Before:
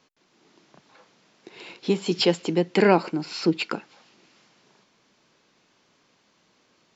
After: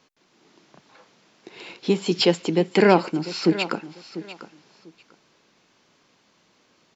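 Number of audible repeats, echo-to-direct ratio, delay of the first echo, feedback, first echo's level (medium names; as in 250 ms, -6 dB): 2, -14.5 dB, 695 ms, 20%, -14.5 dB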